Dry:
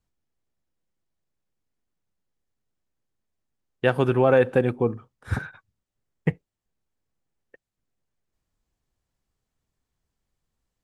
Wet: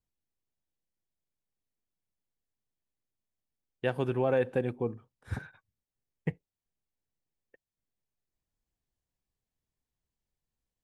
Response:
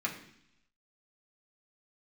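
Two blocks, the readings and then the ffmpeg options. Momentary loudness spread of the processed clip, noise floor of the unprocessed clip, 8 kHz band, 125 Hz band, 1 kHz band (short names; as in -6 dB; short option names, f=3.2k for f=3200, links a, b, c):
13 LU, -85 dBFS, n/a, -9.0 dB, -10.0 dB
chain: -af "equalizer=f=1.3k:w=3.5:g=-5.5,volume=-9dB"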